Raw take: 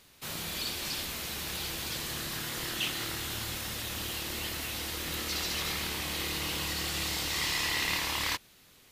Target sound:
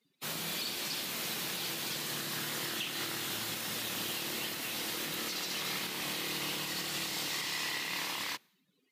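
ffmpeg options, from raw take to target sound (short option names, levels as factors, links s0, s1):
-af "highpass=f=140:w=0.5412,highpass=f=140:w=1.3066,afftdn=nr=26:nf=-54,alimiter=level_in=1.5:limit=0.0631:level=0:latency=1:release=260,volume=0.668,volume=1.19"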